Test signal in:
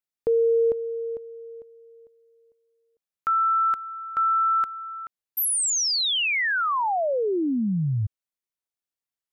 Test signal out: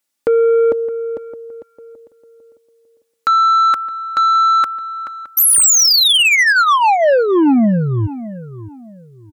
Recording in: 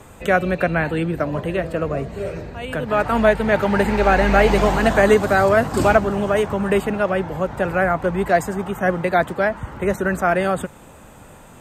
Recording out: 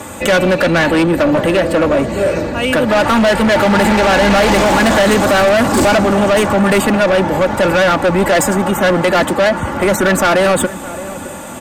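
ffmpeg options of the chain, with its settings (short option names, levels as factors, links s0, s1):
-filter_complex "[0:a]highpass=100,equalizer=f=8400:t=o:w=1.5:g=4,aecho=1:1:3.5:0.53,asplit=2[s0][s1];[s1]alimiter=limit=0.237:level=0:latency=1:release=25,volume=1.12[s2];[s0][s2]amix=inputs=2:normalize=0,asoftclip=type=tanh:threshold=0.15,asplit=2[s3][s4];[s4]adelay=616,lowpass=f=1600:p=1,volume=0.178,asplit=2[s5][s6];[s6]adelay=616,lowpass=f=1600:p=1,volume=0.31,asplit=2[s7][s8];[s8]adelay=616,lowpass=f=1600:p=1,volume=0.31[s9];[s3][s5][s7][s9]amix=inputs=4:normalize=0,volume=2.51"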